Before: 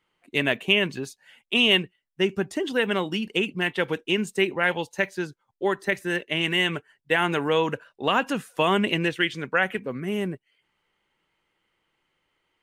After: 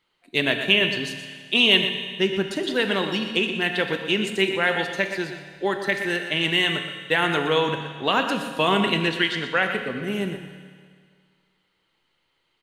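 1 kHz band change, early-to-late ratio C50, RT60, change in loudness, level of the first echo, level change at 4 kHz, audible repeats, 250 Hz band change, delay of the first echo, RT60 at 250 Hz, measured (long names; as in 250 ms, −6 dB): +2.0 dB, 5.5 dB, 1.9 s, +2.0 dB, −10.0 dB, +4.0 dB, 1, +1.0 dB, 121 ms, 1.9 s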